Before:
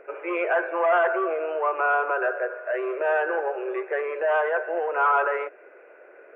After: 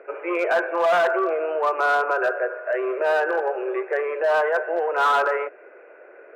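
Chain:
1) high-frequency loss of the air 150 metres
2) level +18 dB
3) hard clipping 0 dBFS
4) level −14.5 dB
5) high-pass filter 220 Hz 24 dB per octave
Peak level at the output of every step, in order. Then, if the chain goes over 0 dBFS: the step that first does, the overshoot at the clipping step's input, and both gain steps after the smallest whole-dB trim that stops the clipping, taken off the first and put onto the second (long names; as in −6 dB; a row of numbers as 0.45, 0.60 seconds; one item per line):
−11.5, +6.5, 0.0, −14.5, −9.5 dBFS
step 2, 6.5 dB
step 2 +11 dB, step 4 −7.5 dB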